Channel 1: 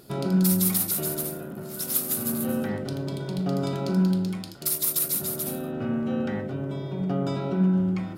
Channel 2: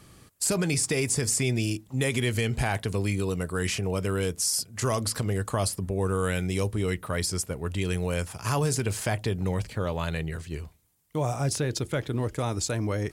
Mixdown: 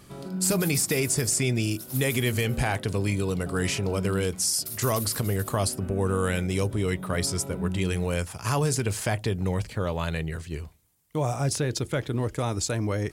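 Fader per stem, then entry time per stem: −10.5, +1.0 decibels; 0.00, 0.00 seconds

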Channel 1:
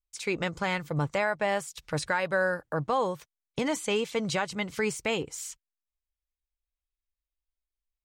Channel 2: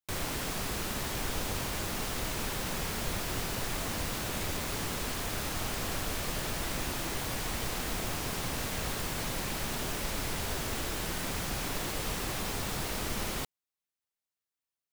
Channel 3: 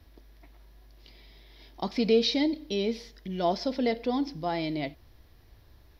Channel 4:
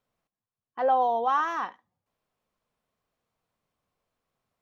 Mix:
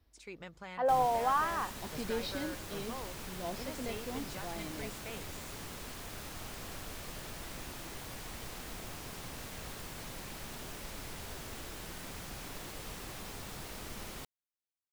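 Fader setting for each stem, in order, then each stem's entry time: −17.5, −10.0, −14.0, −5.0 decibels; 0.00, 0.80, 0.00, 0.00 seconds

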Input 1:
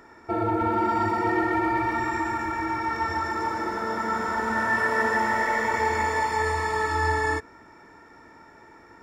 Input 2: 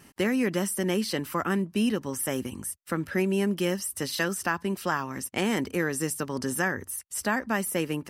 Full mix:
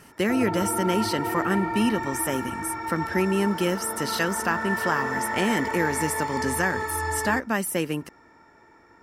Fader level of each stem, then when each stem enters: −4.5, +2.0 decibels; 0.00, 0.00 seconds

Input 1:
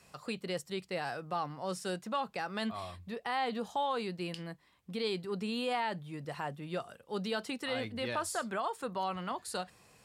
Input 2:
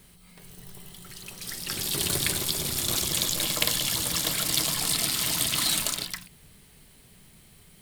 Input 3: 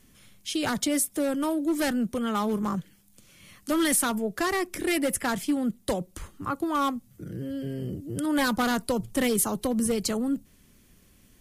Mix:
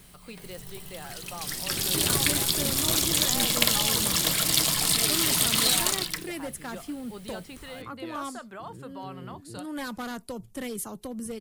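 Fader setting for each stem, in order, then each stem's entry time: −6.0, +2.5, −10.0 decibels; 0.00, 0.00, 1.40 seconds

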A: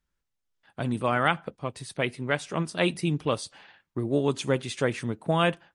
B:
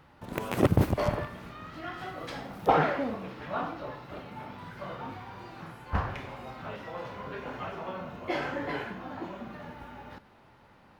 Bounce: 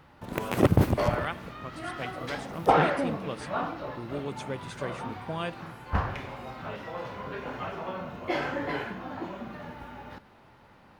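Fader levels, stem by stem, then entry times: −10.5, +2.0 decibels; 0.00, 0.00 seconds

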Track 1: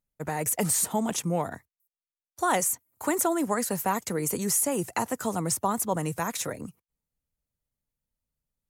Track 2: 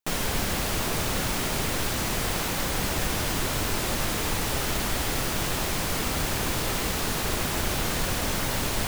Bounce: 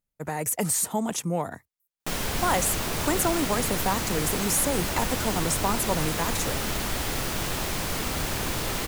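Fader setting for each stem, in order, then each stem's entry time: 0.0, −1.5 decibels; 0.00, 2.00 seconds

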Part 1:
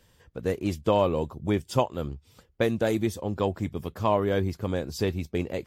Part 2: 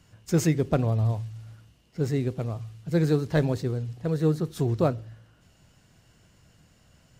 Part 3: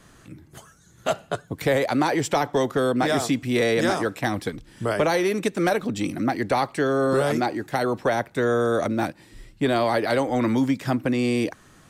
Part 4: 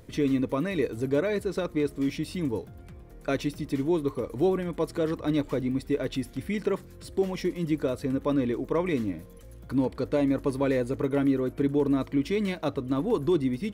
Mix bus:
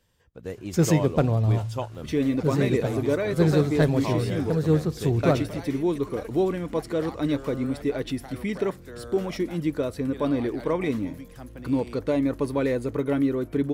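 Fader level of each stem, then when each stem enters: −7.5, +2.0, −19.5, +1.0 decibels; 0.00, 0.45, 0.50, 1.95 seconds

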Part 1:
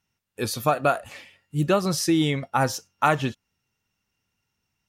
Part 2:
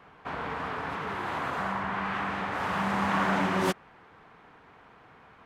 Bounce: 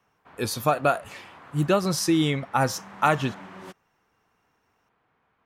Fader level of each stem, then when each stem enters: −0.5, −16.0 decibels; 0.00, 0.00 seconds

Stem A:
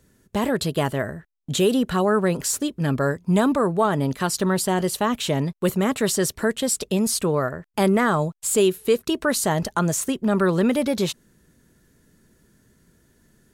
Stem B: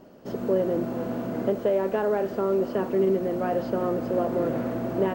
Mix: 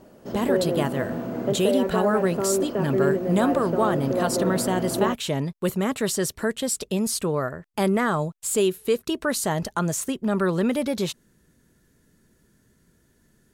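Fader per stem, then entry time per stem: −3.0, 0.0 decibels; 0.00, 0.00 seconds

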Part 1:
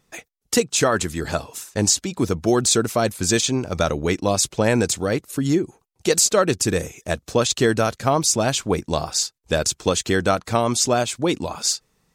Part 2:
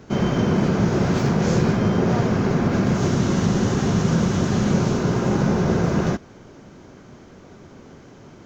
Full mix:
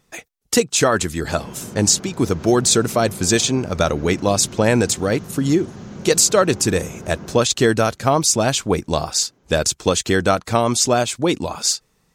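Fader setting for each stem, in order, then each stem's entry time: +2.5, −15.5 decibels; 0.00, 1.25 seconds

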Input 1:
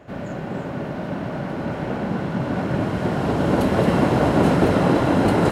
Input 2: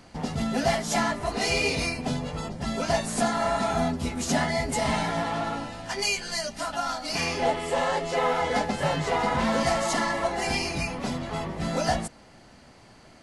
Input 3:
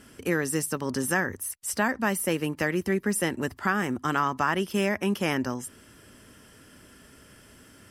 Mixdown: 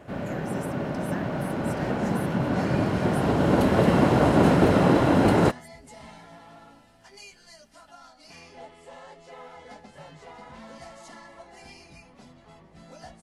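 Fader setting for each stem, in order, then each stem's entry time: −1.5, −20.0, −16.5 decibels; 0.00, 1.15, 0.00 seconds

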